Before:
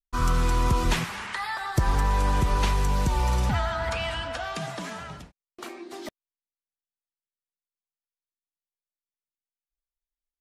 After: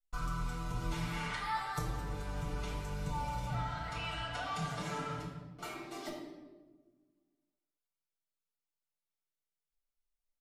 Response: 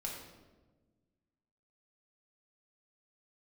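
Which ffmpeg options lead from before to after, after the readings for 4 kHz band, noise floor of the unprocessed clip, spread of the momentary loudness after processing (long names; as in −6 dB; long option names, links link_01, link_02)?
−10.0 dB, below −85 dBFS, 8 LU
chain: -filter_complex "[0:a]acompressor=threshold=-33dB:ratio=6,aecho=1:1:6.8:0.78[link_01];[1:a]atrim=start_sample=2205,asetrate=43218,aresample=44100[link_02];[link_01][link_02]afir=irnorm=-1:irlink=0,volume=-4dB"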